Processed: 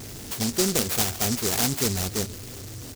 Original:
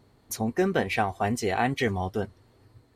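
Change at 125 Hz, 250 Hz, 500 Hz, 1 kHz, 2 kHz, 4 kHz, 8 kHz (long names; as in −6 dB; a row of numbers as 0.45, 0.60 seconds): +2.0, +0.5, −2.5, −6.5, −3.5, +11.0, +15.5 decibels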